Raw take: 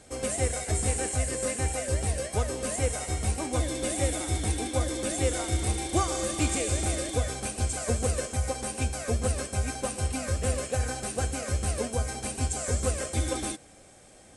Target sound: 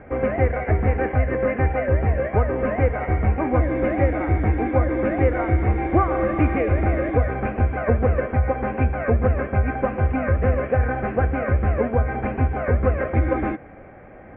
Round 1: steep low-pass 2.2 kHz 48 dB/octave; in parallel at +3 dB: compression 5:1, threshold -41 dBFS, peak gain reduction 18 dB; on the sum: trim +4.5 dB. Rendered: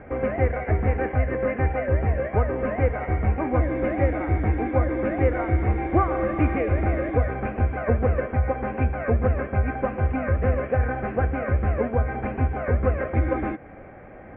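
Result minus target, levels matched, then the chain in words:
compression: peak gain reduction +8 dB
steep low-pass 2.2 kHz 48 dB/octave; in parallel at +3 dB: compression 5:1, threshold -31 dBFS, peak gain reduction 10 dB; on the sum: trim +4.5 dB

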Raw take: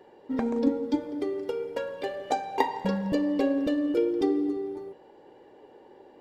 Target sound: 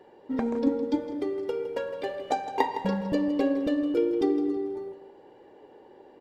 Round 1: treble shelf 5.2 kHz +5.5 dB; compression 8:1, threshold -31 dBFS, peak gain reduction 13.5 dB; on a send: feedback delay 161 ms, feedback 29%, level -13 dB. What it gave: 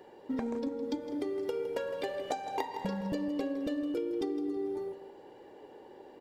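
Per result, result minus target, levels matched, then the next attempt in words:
compression: peak gain reduction +13.5 dB; 8 kHz band +6.0 dB
treble shelf 5.2 kHz +5.5 dB; on a send: feedback delay 161 ms, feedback 29%, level -13 dB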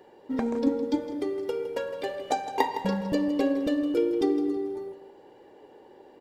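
8 kHz band +6.0 dB
treble shelf 5.2 kHz -3.5 dB; on a send: feedback delay 161 ms, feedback 29%, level -13 dB

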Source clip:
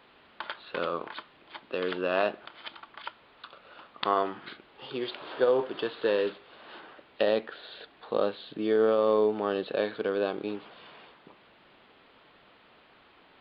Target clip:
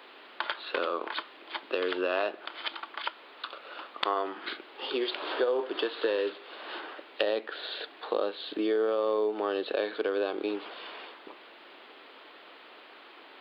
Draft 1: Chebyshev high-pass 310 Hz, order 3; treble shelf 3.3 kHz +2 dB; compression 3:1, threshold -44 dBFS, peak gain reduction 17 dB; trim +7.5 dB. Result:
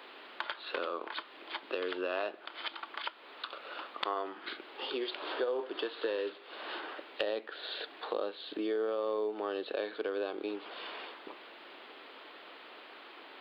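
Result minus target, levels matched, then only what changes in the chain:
compression: peak gain reduction +5.5 dB
change: compression 3:1, threshold -35.5 dBFS, peak gain reduction 11.5 dB

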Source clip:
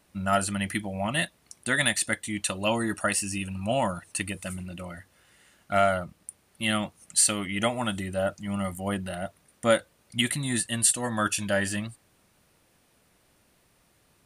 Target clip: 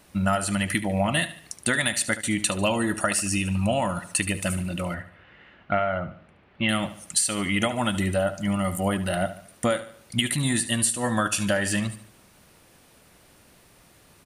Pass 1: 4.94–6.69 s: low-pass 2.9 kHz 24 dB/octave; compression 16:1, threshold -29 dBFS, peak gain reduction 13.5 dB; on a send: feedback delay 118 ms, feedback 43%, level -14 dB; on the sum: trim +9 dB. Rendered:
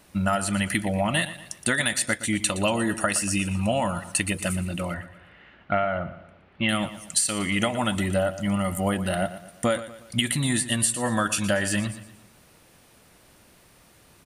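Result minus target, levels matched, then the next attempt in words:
echo 45 ms late
4.94–6.69 s: low-pass 2.9 kHz 24 dB/octave; compression 16:1, threshold -29 dBFS, peak gain reduction 13.5 dB; on a send: feedback delay 73 ms, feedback 43%, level -14 dB; on the sum: trim +9 dB

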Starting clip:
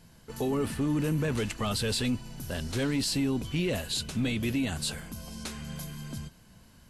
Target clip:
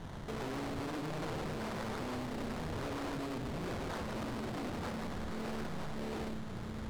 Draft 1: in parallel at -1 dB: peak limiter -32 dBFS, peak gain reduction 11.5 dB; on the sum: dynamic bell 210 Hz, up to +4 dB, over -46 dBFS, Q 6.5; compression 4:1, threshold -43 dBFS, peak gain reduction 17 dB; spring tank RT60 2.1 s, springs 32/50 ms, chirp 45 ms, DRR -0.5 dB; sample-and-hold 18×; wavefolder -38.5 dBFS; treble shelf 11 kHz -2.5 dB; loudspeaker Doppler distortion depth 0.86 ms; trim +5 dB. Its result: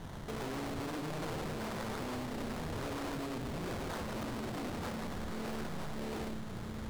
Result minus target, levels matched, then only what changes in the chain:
8 kHz band +2.5 dB
change: treble shelf 11 kHz -14.5 dB

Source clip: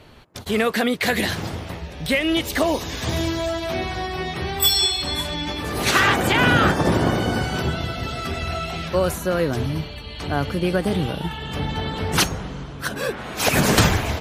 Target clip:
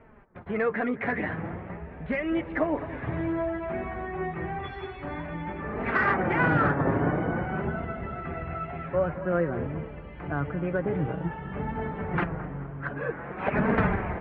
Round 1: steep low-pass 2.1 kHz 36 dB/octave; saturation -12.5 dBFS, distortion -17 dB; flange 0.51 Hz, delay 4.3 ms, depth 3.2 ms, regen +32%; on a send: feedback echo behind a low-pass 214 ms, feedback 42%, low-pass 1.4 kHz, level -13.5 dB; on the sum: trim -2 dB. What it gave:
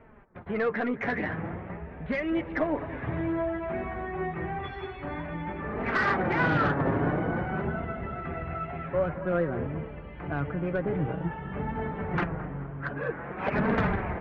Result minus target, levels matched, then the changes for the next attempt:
saturation: distortion +12 dB
change: saturation -4.5 dBFS, distortion -29 dB

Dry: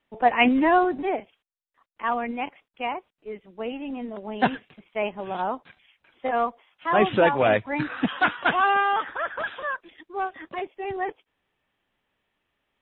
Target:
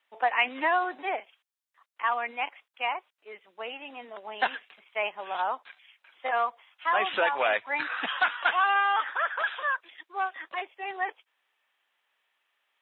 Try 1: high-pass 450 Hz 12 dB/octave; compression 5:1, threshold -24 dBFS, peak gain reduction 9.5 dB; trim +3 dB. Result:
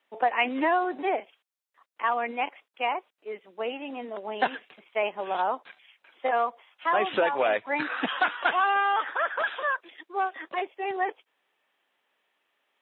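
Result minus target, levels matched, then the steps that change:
500 Hz band +4.0 dB
change: high-pass 910 Hz 12 dB/octave

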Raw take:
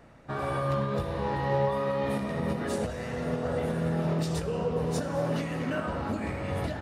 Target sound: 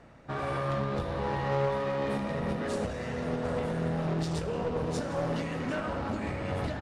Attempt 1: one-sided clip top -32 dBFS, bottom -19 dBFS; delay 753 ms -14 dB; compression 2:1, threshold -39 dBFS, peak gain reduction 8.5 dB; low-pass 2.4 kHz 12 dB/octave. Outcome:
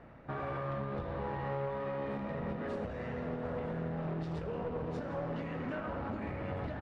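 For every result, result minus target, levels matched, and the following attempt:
8 kHz band -17.5 dB; compression: peak gain reduction +8.5 dB
one-sided clip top -32 dBFS, bottom -19 dBFS; delay 753 ms -14 dB; compression 2:1, threshold -39 dBFS, peak gain reduction 8.5 dB; low-pass 8.4 kHz 12 dB/octave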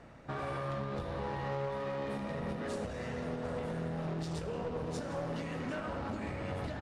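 compression: peak gain reduction +8.5 dB
one-sided clip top -32 dBFS, bottom -19 dBFS; low-pass 8.4 kHz 12 dB/octave; delay 753 ms -14 dB

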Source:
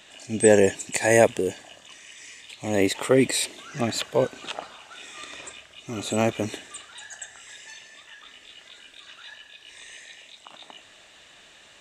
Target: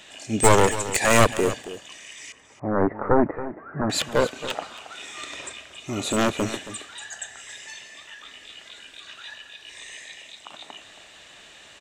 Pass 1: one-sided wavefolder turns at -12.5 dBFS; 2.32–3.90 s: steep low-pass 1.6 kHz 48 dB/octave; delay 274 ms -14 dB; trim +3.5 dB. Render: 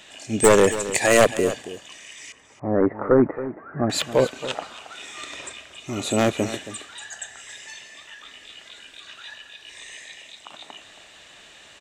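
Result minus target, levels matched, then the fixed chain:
one-sided wavefolder: distortion -9 dB
one-sided wavefolder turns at -18.5 dBFS; 2.32–3.90 s: steep low-pass 1.6 kHz 48 dB/octave; delay 274 ms -14 dB; trim +3.5 dB

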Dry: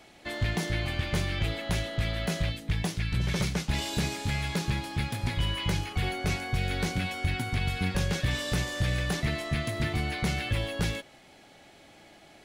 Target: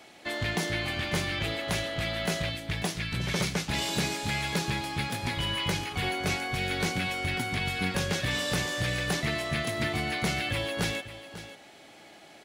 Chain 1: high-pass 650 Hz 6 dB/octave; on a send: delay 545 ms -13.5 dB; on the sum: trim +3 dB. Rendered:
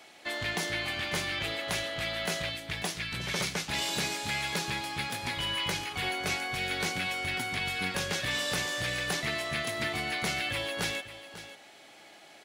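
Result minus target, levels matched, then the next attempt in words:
250 Hz band -5.0 dB
high-pass 230 Hz 6 dB/octave; on a send: delay 545 ms -13.5 dB; on the sum: trim +3 dB

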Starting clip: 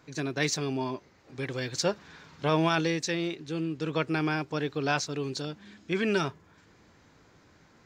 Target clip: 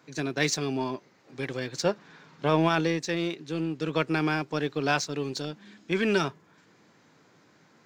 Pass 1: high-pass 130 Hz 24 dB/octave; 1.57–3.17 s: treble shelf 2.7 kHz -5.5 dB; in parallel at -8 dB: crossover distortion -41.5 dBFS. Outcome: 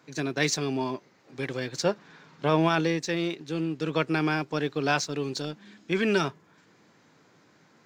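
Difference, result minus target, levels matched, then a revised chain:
crossover distortion: distortion -6 dB
high-pass 130 Hz 24 dB/octave; 1.57–3.17 s: treble shelf 2.7 kHz -5.5 dB; in parallel at -8 dB: crossover distortion -34.5 dBFS

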